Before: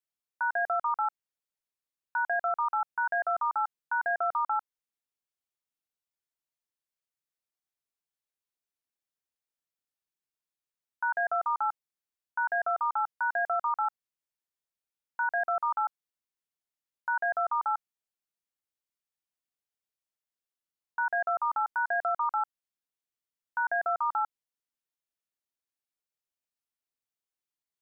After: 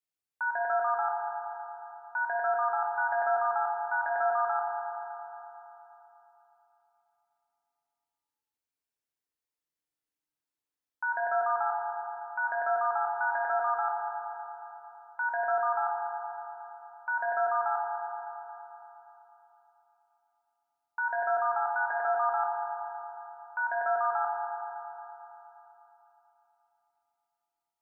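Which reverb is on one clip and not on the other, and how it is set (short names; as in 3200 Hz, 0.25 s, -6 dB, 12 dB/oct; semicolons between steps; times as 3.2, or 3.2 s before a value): FDN reverb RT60 3.5 s, high-frequency decay 0.35×, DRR -1.5 dB; gain -3.5 dB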